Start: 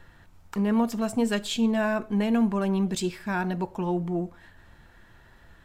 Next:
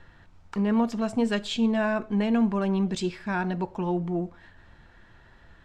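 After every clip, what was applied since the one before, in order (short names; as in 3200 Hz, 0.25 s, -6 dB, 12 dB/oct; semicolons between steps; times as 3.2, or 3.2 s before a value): LPF 5700 Hz 12 dB/oct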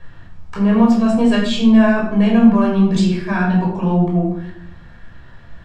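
shoebox room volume 1000 m³, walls furnished, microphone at 5.6 m; gain +2 dB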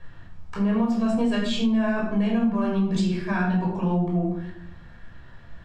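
compressor, threshold -14 dBFS, peak gain reduction 9 dB; gain -5 dB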